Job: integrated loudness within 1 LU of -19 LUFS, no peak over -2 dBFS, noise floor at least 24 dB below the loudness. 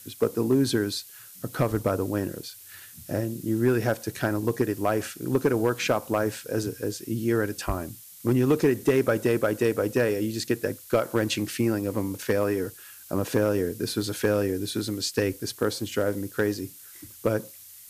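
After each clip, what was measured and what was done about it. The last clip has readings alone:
clipped samples 0.2%; clipping level -13.5 dBFS; noise floor -47 dBFS; noise floor target -51 dBFS; loudness -26.5 LUFS; peak level -13.5 dBFS; loudness target -19.0 LUFS
-> clip repair -13.5 dBFS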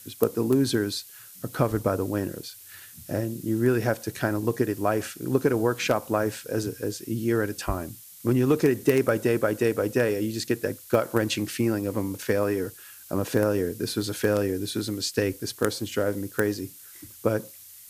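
clipped samples 0.0%; noise floor -47 dBFS; noise floor target -51 dBFS
-> noise reduction 6 dB, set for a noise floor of -47 dBFS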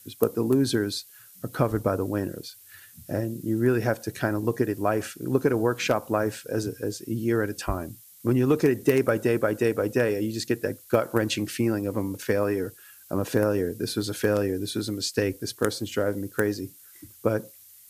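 noise floor -51 dBFS; loudness -26.5 LUFS; peak level -4.5 dBFS; loudness target -19.0 LUFS
-> trim +7.5 dB; peak limiter -2 dBFS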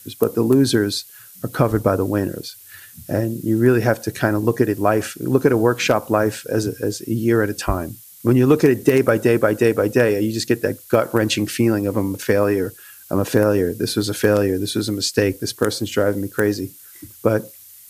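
loudness -19.0 LUFS; peak level -2.0 dBFS; noise floor -44 dBFS

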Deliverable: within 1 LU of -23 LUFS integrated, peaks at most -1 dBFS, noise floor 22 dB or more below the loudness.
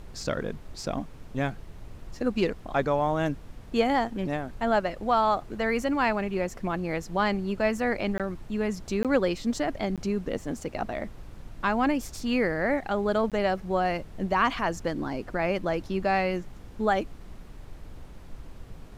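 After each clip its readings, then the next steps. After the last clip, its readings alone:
dropouts 4; longest dropout 17 ms; noise floor -46 dBFS; noise floor target -50 dBFS; loudness -28.0 LUFS; peak level -10.5 dBFS; loudness target -23.0 LUFS
-> interpolate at 8.18/9.03/9.96/13.30 s, 17 ms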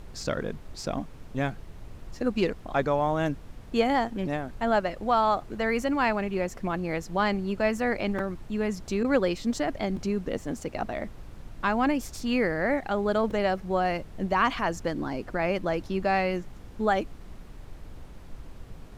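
dropouts 0; noise floor -46 dBFS; noise floor target -50 dBFS
-> noise print and reduce 6 dB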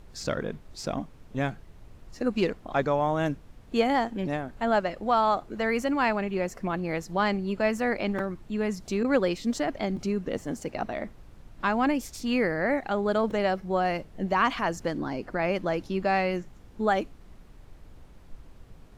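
noise floor -52 dBFS; loudness -28.0 LUFS; peak level -10.5 dBFS; loudness target -23.0 LUFS
-> trim +5 dB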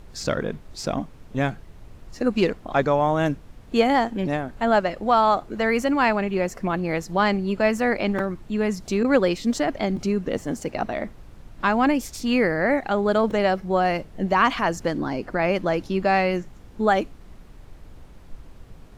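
loudness -23.0 LUFS; peak level -5.5 dBFS; noise floor -47 dBFS

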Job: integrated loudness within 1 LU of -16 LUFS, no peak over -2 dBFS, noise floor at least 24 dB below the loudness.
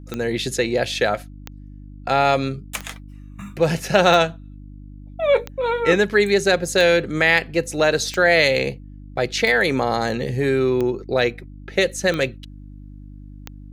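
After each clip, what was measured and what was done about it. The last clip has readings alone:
clicks found 11; hum 50 Hz; highest harmonic 300 Hz; hum level -36 dBFS; loudness -19.5 LUFS; peak level -2.5 dBFS; loudness target -16.0 LUFS
-> de-click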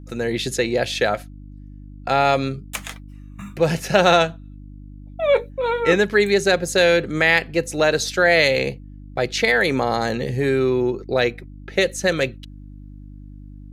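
clicks found 0; hum 50 Hz; highest harmonic 300 Hz; hum level -36 dBFS
-> de-hum 50 Hz, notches 6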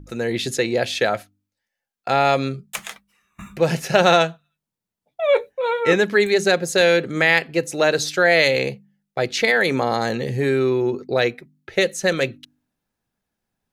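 hum not found; loudness -19.5 LUFS; peak level -2.5 dBFS; loudness target -16.0 LUFS
-> trim +3.5 dB; peak limiter -2 dBFS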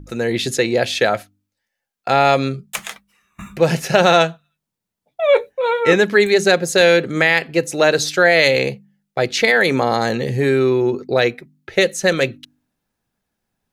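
loudness -16.5 LUFS; peak level -2.0 dBFS; noise floor -81 dBFS

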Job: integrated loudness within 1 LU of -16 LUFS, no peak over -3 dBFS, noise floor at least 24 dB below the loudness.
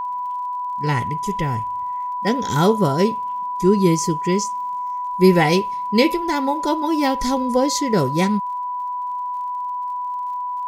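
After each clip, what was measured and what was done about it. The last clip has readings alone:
tick rate 53 per s; steady tone 990 Hz; tone level -23 dBFS; loudness -20.5 LUFS; peak level -2.5 dBFS; loudness target -16.0 LUFS
-> de-click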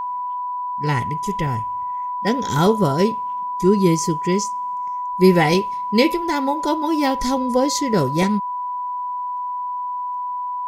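tick rate 0.37 per s; steady tone 990 Hz; tone level -23 dBFS
-> band-stop 990 Hz, Q 30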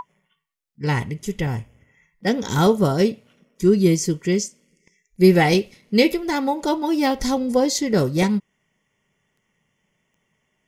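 steady tone not found; loudness -20.5 LUFS; peak level -3.0 dBFS; loudness target -16.0 LUFS
-> trim +4.5 dB; peak limiter -3 dBFS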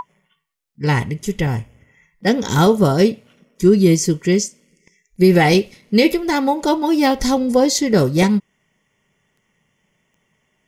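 loudness -16.5 LUFS; peak level -3.0 dBFS; noise floor -68 dBFS

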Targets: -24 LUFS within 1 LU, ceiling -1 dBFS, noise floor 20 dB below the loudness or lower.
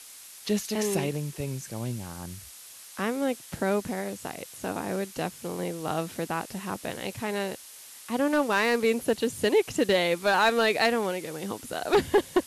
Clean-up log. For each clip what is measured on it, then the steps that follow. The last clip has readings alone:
clipped samples 0.3%; clipping level -14.5 dBFS; noise floor -47 dBFS; noise floor target -48 dBFS; loudness -28.0 LUFS; peak level -14.5 dBFS; loudness target -24.0 LUFS
-> clip repair -14.5 dBFS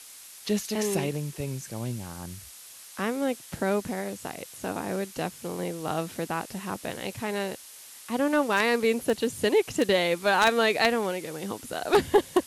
clipped samples 0.0%; noise floor -47 dBFS; noise floor target -48 dBFS
-> noise reduction 6 dB, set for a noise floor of -47 dBFS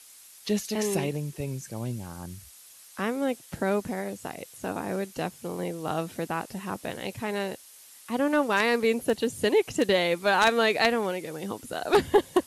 noise floor -51 dBFS; loudness -27.5 LUFS; peak level -5.5 dBFS; loudness target -24.0 LUFS
-> trim +3.5 dB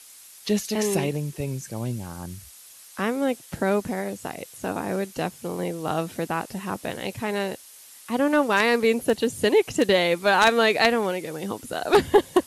loudness -24.0 LUFS; peak level -2.0 dBFS; noise floor -48 dBFS

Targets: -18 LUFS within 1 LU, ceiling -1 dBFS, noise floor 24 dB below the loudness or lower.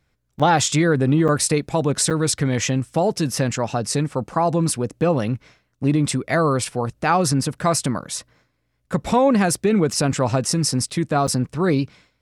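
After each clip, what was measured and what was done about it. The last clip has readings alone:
dropouts 4; longest dropout 6.5 ms; loudness -20.5 LUFS; peak level -4.0 dBFS; loudness target -18.0 LUFS
-> interpolate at 0.39/1.28/2.10/11.27 s, 6.5 ms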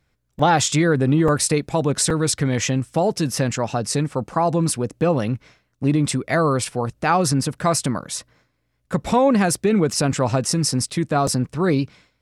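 dropouts 0; loudness -20.5 LUFS; peak level -4.0 dBFS; loudness target -18.0 LUFS
-> trim +2.5 dB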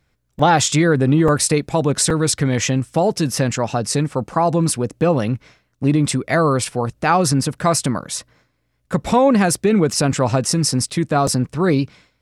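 loudness -18.0 LUFS; peak level -1.5 dBFS; noise floor -67 dBFS

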